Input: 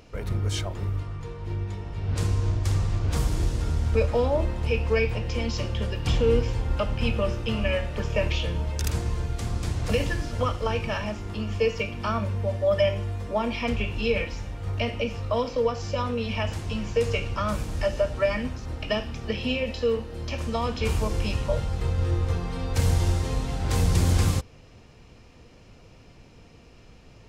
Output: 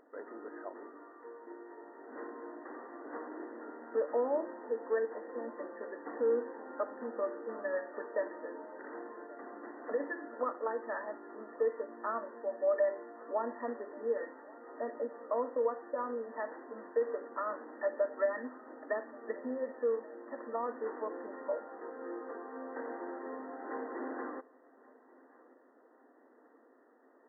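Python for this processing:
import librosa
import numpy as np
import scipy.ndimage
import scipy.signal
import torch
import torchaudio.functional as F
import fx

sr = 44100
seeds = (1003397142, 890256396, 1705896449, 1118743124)

y = fx.brickwall_bandpass(x, sr, low_hz=240.0, high_hz=2000.0)
y = fx.echo_feedback(y, sr, ms=1130, feedback_pct=47, wet_db=-23)
y = y * librosa.db_to_amplitude(-7.0)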